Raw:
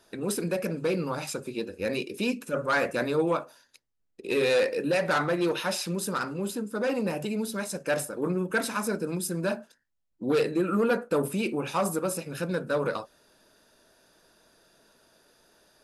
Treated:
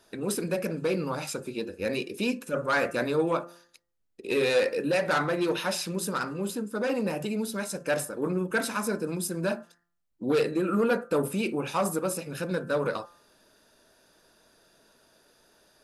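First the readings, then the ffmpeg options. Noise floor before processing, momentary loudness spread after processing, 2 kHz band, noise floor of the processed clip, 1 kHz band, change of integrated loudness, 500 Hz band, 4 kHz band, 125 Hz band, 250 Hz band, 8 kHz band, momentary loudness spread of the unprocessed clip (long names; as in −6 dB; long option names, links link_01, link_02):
−74 dBFS, 7 LU, 0.0 dB, −71 dBFS, 0.0 dB, 0.0 dB, 0.0 dB, 0.0 dB, −0.5 dB, −0.5 dB, 0.0 dB, 7 LU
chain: -af "bandreject=frequency=172.5:width_type=h:width=4,bandreject=frequency=345:width_type=h:width=4,bandreject=frequency=517.5:width_type=h:width=4,bandreject=frequency=690:width_type=h:width=4,bandreject=frequency=862.5:width_type=h:width=4,bandreject=frequency=1035:width_type=h:width=4,bandreject=frequency=1207.5:width_type=h:width=4,bandreject=frequency=1380:width_type=h:width=4,bandreject=frequency=1552.5:width_type=h:width=4,bandreject=frequency=1725:width_type=h:width=4,bandreject=frequency=1897.5:width_type=h:width=4"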